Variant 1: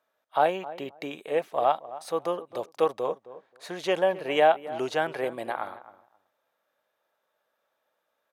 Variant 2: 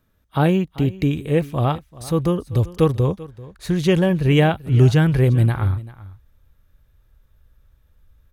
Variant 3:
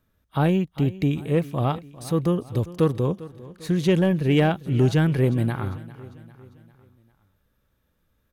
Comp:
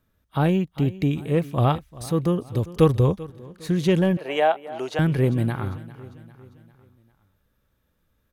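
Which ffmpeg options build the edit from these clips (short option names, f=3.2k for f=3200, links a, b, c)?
-filter_complex "[1:a]asplit=2[a][b];[2:a]asplit=4[c][d][e][f];[c]atrim=end=1.582[g];[a]atrim=start=1.578:end=2.062[h];[d]atrim=start=2.058:end=2.762[i];[b]atrim=start=2.758:end=3.302[j];[e]atrim=start=3.298:end=4.172[k];[0:a]atrim=start=4.168:end=4.992[l];[f]atrim=start=4.988[m];[g][h]acrossfade=d=0.004:c1=hsin:c2=hsin[n];[n][i]acrossfade=d=0.004:c1=hsin:c2=hsin[o];[o][j]acrossfade=d=0.004:c1=hsin:c2=hsin[p];[p][k]acrossfade=d=0.004:c1=hsin:c2=hsin[q];[q][l]acrossfade=d=0.004:c1=hsin:c2=hsin[r];[r][m]acrossfade=d=0.004:c1=hsin:c2=hsin"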